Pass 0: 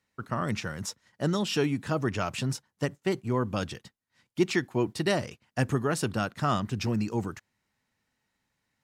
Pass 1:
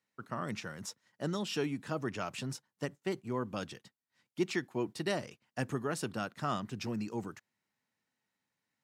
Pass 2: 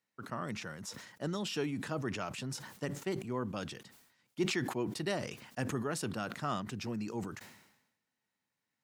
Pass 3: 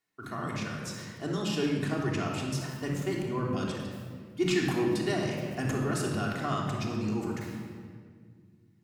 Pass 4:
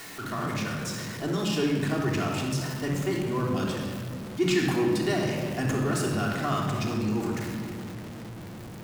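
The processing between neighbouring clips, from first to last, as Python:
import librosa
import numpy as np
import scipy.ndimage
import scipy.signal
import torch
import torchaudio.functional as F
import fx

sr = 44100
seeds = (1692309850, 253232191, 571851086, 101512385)

y1 = scipy.signal.sosfilt(scipy.signal.butter(2, 140.0, 'highpass', fs=sr, output='sos'), x)
y1 = y1 * 10.0 ** (-7.0 / 20.0)
y2 = fx.sustainer(y1, sr, db_per_s=64.0)
y2 = y2 * 10.0 ** (-1.5 / 20.0)
y3 = fx.room_shoebox(y2, sr, seeds[0], volume_m3=2900.0, walls='mixed', distance_m=3.3)
y4 = y3 + 0.5 * 10.0 ** (-37.5 / 20.0) * np.sign(y3)
y4 = y4 * 10.0 ** (2.0 / 20.0)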